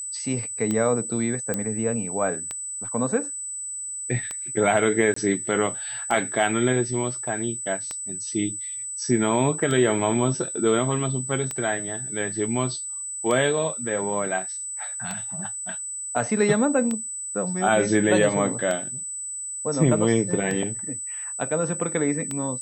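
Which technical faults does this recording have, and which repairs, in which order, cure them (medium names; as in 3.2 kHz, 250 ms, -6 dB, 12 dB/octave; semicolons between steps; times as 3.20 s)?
tick 33 1/3 rpm -14 dBFS
whine 8 kHz -30 dBFS
1.54 s: pop -11 dBFS
5.14–5.16 s: dropout 24 ms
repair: de-click; band-stop 8 kHz, Q 30; interpolate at 5.14 s, 24 ms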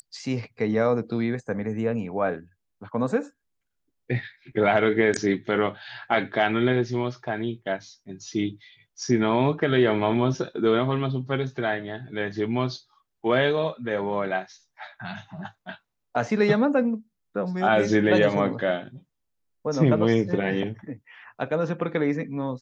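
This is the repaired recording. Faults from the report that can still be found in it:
whine 8 kHz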